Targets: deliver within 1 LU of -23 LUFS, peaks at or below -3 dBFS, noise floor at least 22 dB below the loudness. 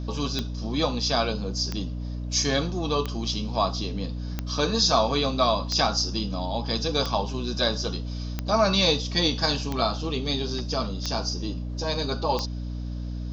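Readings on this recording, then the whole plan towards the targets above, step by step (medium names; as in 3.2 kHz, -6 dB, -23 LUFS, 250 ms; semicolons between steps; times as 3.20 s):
clicks found 10; hum 60 Hz; highest harmonic 300 Hz; hum level -29 dBFS; loudness -26.0 LUFS; peak level -7.5 dBFS; loudness target -23.0 LUFS
-> de-click; hum notches 60/120/180/240/300 Hz; trim +3 dB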